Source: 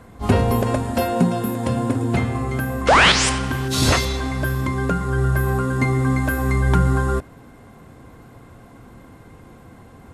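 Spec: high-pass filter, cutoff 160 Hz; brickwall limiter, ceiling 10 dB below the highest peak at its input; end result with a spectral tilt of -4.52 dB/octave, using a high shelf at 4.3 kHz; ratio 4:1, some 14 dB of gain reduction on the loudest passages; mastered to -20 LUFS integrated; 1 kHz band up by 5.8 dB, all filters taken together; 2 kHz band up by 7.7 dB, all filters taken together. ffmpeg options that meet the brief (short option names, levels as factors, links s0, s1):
-af "highpass=160,equalizer=f=1000:t=o:g=5,equalizer=f=2000:t=o:g=6.5,highshelf=f=4300:g=8,acompressor=threshold=0.0891:ratio=4,volume=2.11,alimiter=limit=0.266:level=0:latency=1"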